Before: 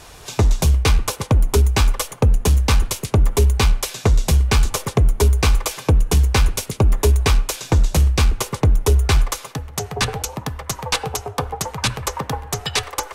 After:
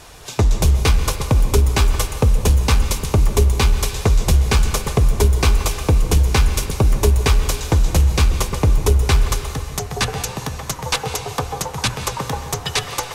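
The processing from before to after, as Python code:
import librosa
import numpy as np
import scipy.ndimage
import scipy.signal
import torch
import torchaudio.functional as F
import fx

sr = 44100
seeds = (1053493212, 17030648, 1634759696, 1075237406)

y = fx.rev_plate(x, sr, seeds[0], rt60_s=2.2, hf_ratio=0.95, predelay_ms=120, drr_db=8.0)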